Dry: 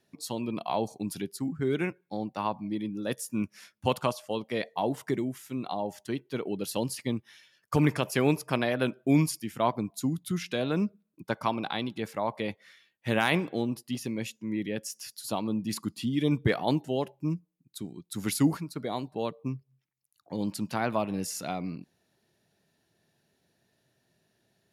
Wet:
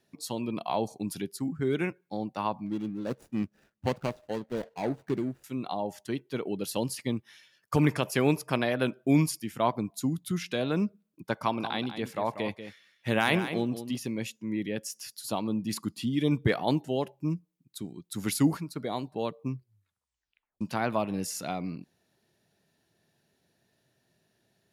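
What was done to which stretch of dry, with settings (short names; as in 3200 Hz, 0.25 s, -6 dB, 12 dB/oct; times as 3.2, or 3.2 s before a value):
2.66–5.44 median filter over 41 samples
11.35–13.96 echo 0.189 s -10.5 dB
19.55 tape stop 1.06 s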